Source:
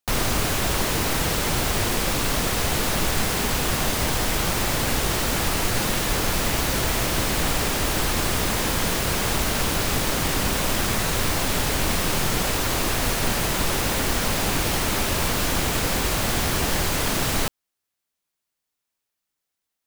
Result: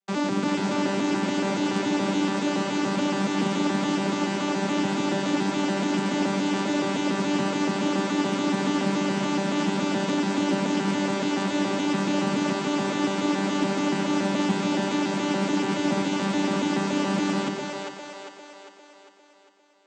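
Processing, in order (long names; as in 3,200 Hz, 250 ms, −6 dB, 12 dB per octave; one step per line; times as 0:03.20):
vocoder with an arpeggio as carrier bare fifth, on G3, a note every 142 ms
echo with a time of its own for lows and highs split 410 Hz, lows 147 ms, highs 401 ms, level −3.5 dB
highs frequency-modulated by the lows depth 0.17 ms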